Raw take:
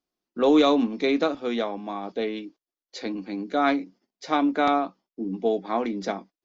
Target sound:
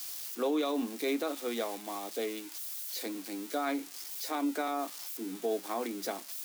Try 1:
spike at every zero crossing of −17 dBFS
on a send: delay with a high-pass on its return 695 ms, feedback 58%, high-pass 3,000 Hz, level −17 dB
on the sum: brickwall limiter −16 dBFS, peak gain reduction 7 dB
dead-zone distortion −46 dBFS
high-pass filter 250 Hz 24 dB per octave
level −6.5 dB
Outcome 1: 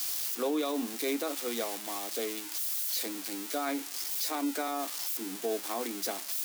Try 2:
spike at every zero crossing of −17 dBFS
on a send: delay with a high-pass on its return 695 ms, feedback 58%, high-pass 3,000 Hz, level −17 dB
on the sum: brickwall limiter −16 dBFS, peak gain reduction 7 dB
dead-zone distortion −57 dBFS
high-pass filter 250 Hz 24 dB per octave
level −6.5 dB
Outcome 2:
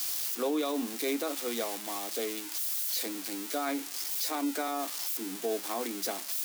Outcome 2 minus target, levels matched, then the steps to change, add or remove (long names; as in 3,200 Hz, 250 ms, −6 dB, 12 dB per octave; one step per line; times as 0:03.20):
spike at every zero crossing: distortion +7 dB
change: spike at every zero crossing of −24.5 dBFS